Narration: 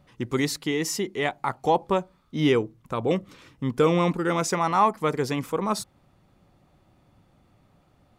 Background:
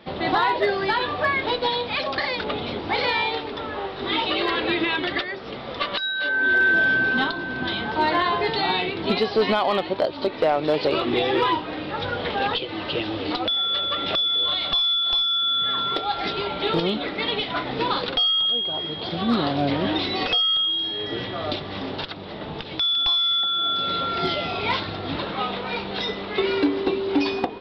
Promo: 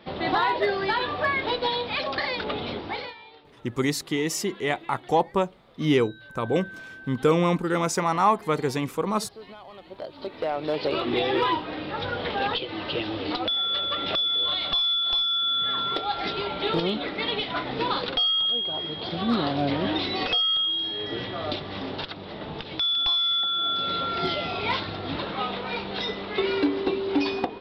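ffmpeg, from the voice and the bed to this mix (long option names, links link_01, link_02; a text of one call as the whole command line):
ffmpeg -i stem1.wav -i stem2.wav -filter_complex "[0:a]adelay=3450,volume=0dB[link_01];[1:a]volume=18.5dB,afade=type=out:start_time=2.72:duration=0.43:silence=0.0891251,afade=type=in:start_time=9.76:duration=1.42:silence=0.0891251[link_02];[link_01][link_02]amix=inputs=2:normalize=0" out.wav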